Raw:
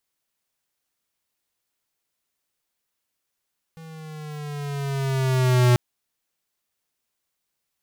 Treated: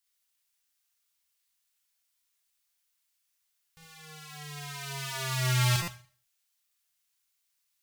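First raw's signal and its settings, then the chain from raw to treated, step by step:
gliding synth tone square, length 1.99 s, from 163 Hz, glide -5 st, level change +26.5 dB, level -15 dB
passive tone stack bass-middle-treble 10-0-10; Schroeder reverb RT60 0.43 s, combs from 32 ms, DRR -0.5 dB; stuck buffer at 5.82, samples 256, times 9

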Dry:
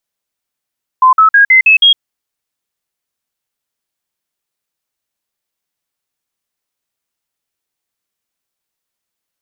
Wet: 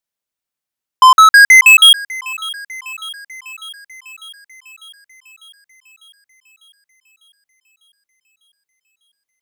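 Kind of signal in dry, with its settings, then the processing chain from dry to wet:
stepped sine 1030 Hz up, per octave 3, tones 6, 0.11 s, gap 0.05 s -3 dBFS
sample leveller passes 3; thinning echo 0.599 s, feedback 70%, high-pass 1100 Hz, level -19 dB

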